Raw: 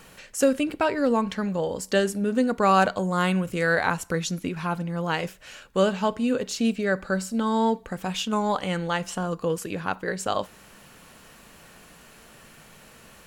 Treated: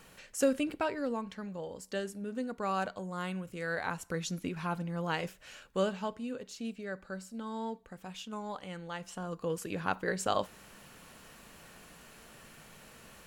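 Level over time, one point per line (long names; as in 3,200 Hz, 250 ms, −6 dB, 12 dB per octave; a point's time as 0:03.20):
0:00.69 −7 dB
0:01.23 −14 dB
0:03.57 −14 dB
0:04.39 −7 dB
0:05.65 −7 dB
0:06.36 −15.5 dB
0:08.82 −15.5 dB
0:09.90 −4 dB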